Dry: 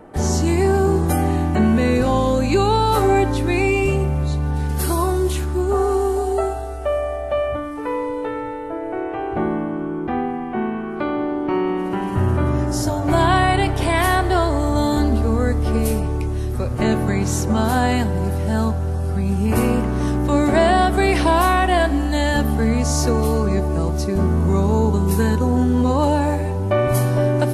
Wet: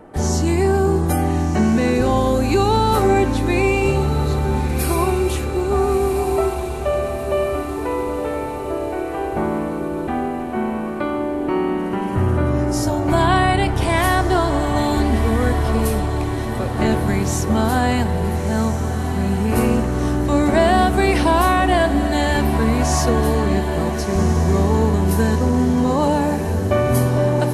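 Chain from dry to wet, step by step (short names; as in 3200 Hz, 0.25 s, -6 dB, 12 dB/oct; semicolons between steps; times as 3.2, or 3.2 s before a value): diffused feedback echo 1.377 s, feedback 60%, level -9 dB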